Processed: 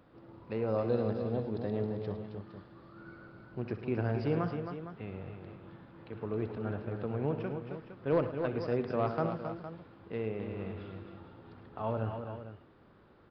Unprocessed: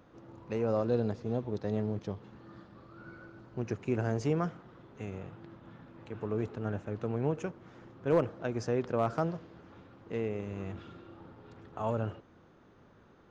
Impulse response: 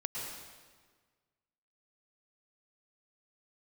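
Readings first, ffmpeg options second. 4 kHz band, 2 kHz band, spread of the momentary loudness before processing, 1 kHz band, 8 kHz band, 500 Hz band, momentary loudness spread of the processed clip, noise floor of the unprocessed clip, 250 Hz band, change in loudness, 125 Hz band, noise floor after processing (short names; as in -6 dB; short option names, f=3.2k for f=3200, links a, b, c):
-1.5 dB, -0.5 dB, 22 LU, -0.5 dB, n/a, -0.5 dB, 20 LU, -60 dBFS, -1.0 dB, -1.5 dB, -0.5 dB, -60 dBFS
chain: -af "aecho=1:1:63|107|268|289|461:0.224|0.211|0.422|0.126|0.266,aresample=11025,aresample=44100,volume=-2dB"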